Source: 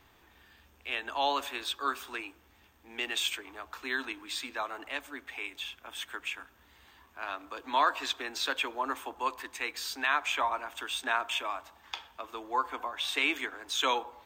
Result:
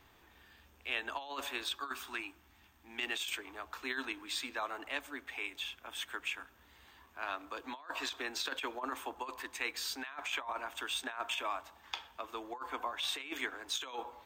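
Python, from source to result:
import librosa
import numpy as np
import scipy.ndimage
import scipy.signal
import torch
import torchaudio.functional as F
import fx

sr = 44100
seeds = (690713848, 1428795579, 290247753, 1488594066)

y = fx.over_compress(x, sr, threshold_db=-33.0, ratio=-0.5)
y = fx.peak_eq(y, sr, hz=490.0, db=-14.0, octaves=0.35, at=(1.76, 3.06))
y = y * 10.0 ** (-4.0 / 20.0)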